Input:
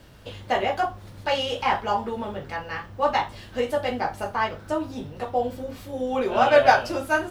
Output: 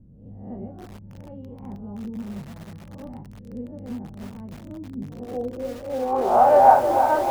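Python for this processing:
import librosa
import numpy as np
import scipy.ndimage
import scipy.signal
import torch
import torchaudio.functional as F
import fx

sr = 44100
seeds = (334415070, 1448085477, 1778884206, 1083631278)

p1 = fx.spec_swells(x, sr, rise_s=0.57)
p2 = (np.mod(10.0 ** (9.5 / 20.0) * p1 + 1.0, 2.0) - 1.0) / 10.0 ** (9.5 / 20.0)
p3 = p1 + (p2 * librosa.db_to_amplitude(-11.0))
p4 = fx.filter_sweep_lowpass(p3, sr, from_hz=200.0, to_hz=850.0, start_s=4.93, end_s=6.13, q=2.6)
p5 = fx.echo_crushed(p4, sr, ms=314, feedback_pct=80, bits=5, wet_db=-8)
y = p5 * librosa.db_to_amplitude(-6.0)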